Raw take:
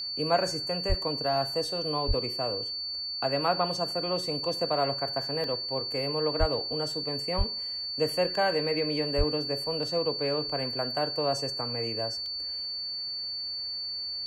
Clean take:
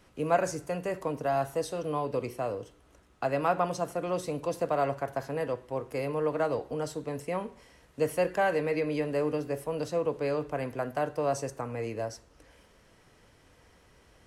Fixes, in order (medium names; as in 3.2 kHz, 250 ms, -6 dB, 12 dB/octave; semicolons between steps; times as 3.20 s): band-stop 4.5 kHz, Q 30; de-plosive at 0.88/2.07/6.39/7.37/9.17 s; interpolate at 5.44/12.26 s, 1.1 ms